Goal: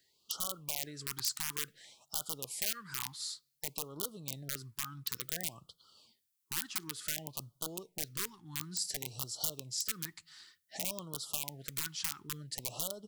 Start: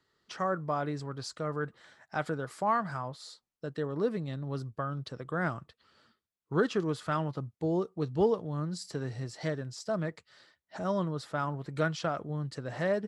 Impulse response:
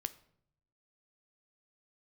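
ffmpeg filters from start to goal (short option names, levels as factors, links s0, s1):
-filter_complex "[0:a]acompressor=threshold=0.0158:ratio=16,aeval=exprs='(mod(39.8*val(0)+1,2)-1)/39.8':c=same,crystalizer=i=7:c=0,asplit=2[s0][s1];[1:a]atrim=start_sample=2205[s2];[s1][s2]afir=irnorm=-1:irlink=0,volume=0.316[s3];[s0][s3]amix=inputs=2:normalize=0,afftfilt=real='re*(1-between(b*sr/1024,520*pow(2100/520,0.5+0.5*sin(2*PI*0.56*pts/sr))/1.41,520*pow(2100/520,0.5+0.5*sin(2*PI*0.56*pts/sr))*1.41))':imag='im*(1-between(b*sr/1024,520*pow(2100/520,0.5+0.5*sin(2*PI*0.56*pts/sr))/1.41,520*pow(2100/520,0.5+0.5*sin(2*PI*0.56*pts/sr))*1.41))':win_size=1024:overlap=0.75,volume=0.355"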